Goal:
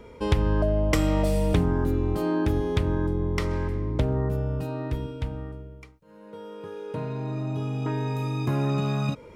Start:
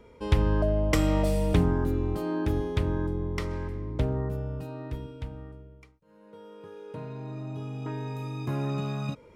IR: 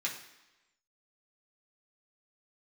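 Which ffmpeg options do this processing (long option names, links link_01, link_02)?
-af "acompressor=threshold=-30dB:ratio=2,volume=7dB"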